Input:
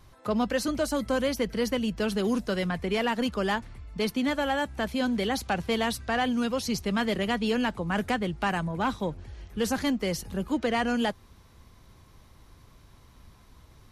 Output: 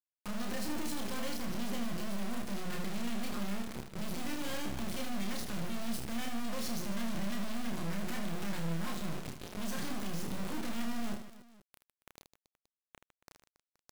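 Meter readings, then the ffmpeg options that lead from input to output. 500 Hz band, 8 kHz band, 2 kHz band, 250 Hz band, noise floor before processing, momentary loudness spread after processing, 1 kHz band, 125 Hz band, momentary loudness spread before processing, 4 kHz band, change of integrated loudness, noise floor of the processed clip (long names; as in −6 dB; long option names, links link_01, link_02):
−15.5 dB, −4.0 dB, −12.5 dB, −9.5 dB, −56 dBFS, 4 LU, −13.0 dB, −6.0 dB, 4 LU, −9.5 dB, −10.5 dB, below −85 dBFS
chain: -filter_complex "[0:a]highpass=140,lowshelf=frequency=350:width_type=q:width=1.5:gain=12.5,bandreject=frequency=60:width_type=h:width=6,bandreject=frequency=120:width_type=h:width=6,bandreject=frequency=180:width_type=h:width=6,aecho=1:1:5.6:0.92,acrossover=split=420|1400[link_01][link_02][link_03];[link_01]acompressor=threshold=-23dB:ratio=4[link_04];[link_02]acompressor=threshold=-35dB:ratio=4[link_05];[link_03]acompressor=threshold=-32dB:ratio=4[link_06];[link_04][link_05][link_06]amix=inputs=3:normalize=0,aeval=exprs='(tanh(79.4*val(0)+0.75)-tanh(0.75))/79.4':channel_layout=same,acrusher=bits=5:dc=4:mix=0:aa=0.000001,asplit=2[link_07][link_08];[link_08]aecho=0:1:30|78|154.8|277.7|474.3:0.631|0.398|0.251|0.158|0.1[link_09];[link_07][link_09]amix=inputs=2:normalize=0,volume=7.5dB"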